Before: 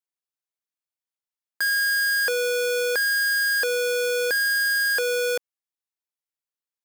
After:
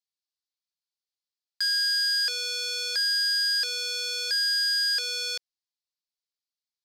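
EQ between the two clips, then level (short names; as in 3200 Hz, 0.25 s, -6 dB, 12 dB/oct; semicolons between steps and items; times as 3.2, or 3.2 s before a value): band-pass 4500 Hz, Q 2.9; +7.5 dB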